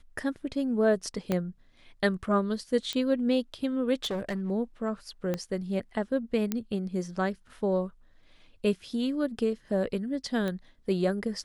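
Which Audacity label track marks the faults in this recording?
1.320000	1.320000	click −14 dBFS
2.930000	2.930000	click −18 dBFS
4.020000	4.510000	clipping −27.5 dBFS
5.340000	5.340000	click −17 dBFS
6.520000	6.520000	click −14 dBFS
10.480000	10.480000	click −20 dBFS

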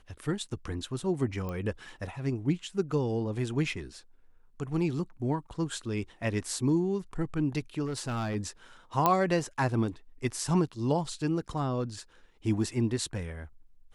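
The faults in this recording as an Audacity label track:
1.490000	1.490000	click −24 dBFS
7.850000	8.360000	clipping −28.5 dBFS
9.060000	9.060000	click −10 dBFS

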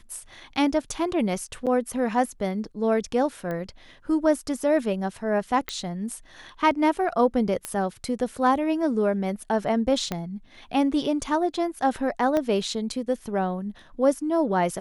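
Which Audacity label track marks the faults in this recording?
1.660000	1.670000	drop-out 7.4 ms
3.510000	3.510000	click −20 dBFS
5.690000	5.690000	click −12 dBFS
7.650000	7.650000	click −14 dBFS
10.120000	10.120000	click −13 dBFS
12.370000	12.370000	click −13 dBFS

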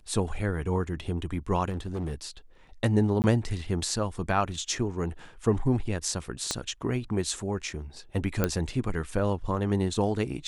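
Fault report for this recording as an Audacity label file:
1.690000	2.140000	clipping −28 dBFS
3.220000	3.240000	drop-out 19 ms
6.510000	6.510000	click −13 dBFS
8.440000	8.440000	click −10 dBFS

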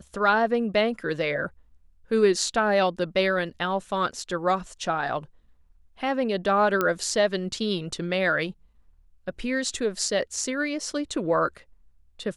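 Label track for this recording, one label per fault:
6.810000	6.810000	click −10 dBFS

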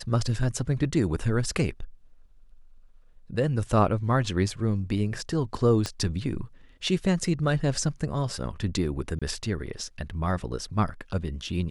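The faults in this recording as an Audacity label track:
5.860000	5.860000	click −15 dBFS
9.190000	9.220000	drop-out 26 ms

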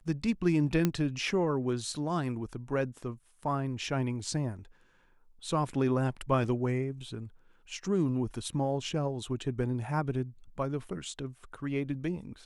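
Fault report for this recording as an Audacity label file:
0.850000	0.850000	click −13 dBFS
6.440000	6.440000	drop-out 2.7 ms

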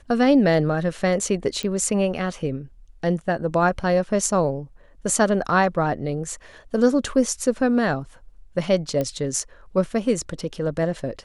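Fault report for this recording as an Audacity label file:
1.630000	1.630000	click −14 dBFS
9.010000	9.010000	click −13 dBFS

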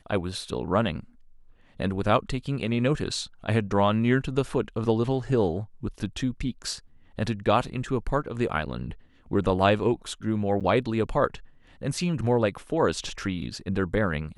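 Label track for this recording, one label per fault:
10.600000	10.610000	drop-out 7.3 ms

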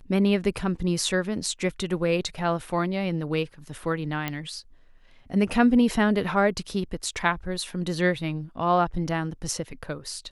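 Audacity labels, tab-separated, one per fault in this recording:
4.280000	4.280000	click −14 dBFS

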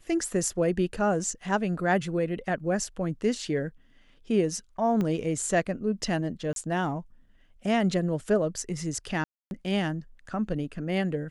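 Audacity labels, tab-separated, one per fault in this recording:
5.010000	5.010000	click −18 dBFS
6.530000	6.560000	drop-out 32 ms
9.240000	9.510000	drop-out 271 ms

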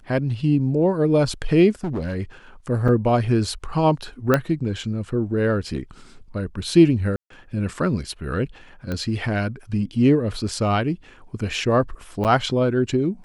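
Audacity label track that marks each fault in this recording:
1.840000	2.160000	clipping −22 dBFS
2.880000	2.890000	drop-out 5.5 ms
4.340000	4.340000	click −5 dBFS
7.160000	7.300000	drop-out 143 ms
8.920000	8.920000	click −15 dBFS
12.240000	12.250000	drop-out 8.4 ms

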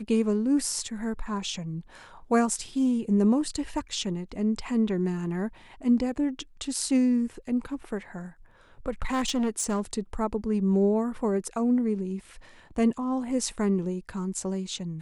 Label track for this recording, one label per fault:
9.020000	9.940000	clipping −22.5 dBFS

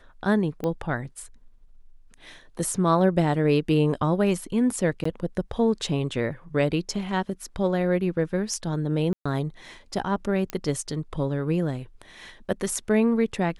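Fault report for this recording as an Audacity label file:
0.640000	0.640000	click −17 dBFS
5.040000	5.050000	drop-out 14 ms
9.130000	9.260000	drop-out 125 ms
10.500000	10.500000	click −14 dBFS

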